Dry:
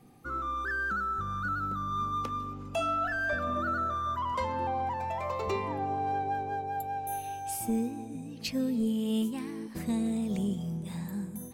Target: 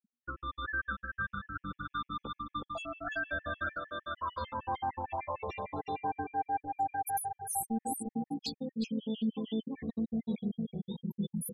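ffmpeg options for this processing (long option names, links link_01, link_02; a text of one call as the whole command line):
ffmpeg -i in.wav -filter_complex "[0:a]equalizer=frequency=3500:width_type=o:width=0.2:gain=6,aecho=1:1:370|740|1110|1480:0.708|0.205|0.0595|0.0173,afftfilt=real='re*gte(hypot(re,im),0.0178)':imag='im*gte(hypot(re,im),0.0178)':win_size=1024:overlap=0.75,bandreject=frequency=60:width_type=h:width=6,bandreject=frequency=120:width_type=h:width=6,bandreject=frequency=180:width_type=h:width=6,bandreject=frequency=240:width_type=h:width=6,bandreject=frequency=300:width_type=h:width=6,areverse,acompressor=threshold=-37dB:ratio=12,areverse,highshelf=frequency=6600:gain=7,asplit=2[link_01][link_02];[link_02]adelay=14,volume=-2dB[link_03];[link_01][link_03]amix=inputs=2:normalize=0,dynaudnorm=framelen=130:gausssize=5:maxgain=3.5dB,afftfilt=real='re*gt(sin(2*PI*6.6*pts/sr)*(1-2*mod(floor(b*sr/1024/1700),2)),0)':imag='im*gt(sin(2*PI*6.6*pts/sr)*(1-2*mod(floor(b*sr/1024/1700),2)),0)':win_size=1024:overlap=0.75,volume=1dB" out.wav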